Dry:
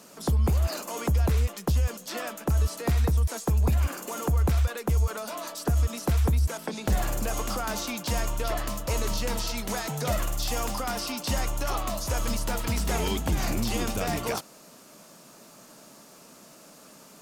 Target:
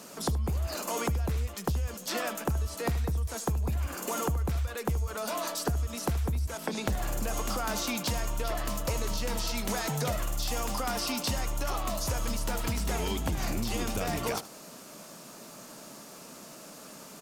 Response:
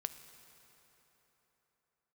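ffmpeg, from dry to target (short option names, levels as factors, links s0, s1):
-af "acompressor=threshold=0.0282:ratio=6,aecho=1:1:76:0.158,volume=1.5"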